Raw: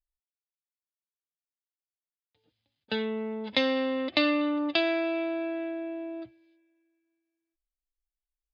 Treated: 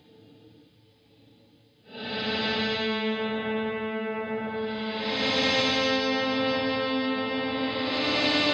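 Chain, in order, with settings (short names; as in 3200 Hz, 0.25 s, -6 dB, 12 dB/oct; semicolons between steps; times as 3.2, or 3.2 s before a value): HPF 120 Hz 12 dB/oct; low shelf 290 Hz +11.5 dB; analogue delay 0.216 s, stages 2048, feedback 75%, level -8 dB; Paulstretch 4.7×, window 0.25 s, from 2.4; spectral compressor 2:1; gain -1 dB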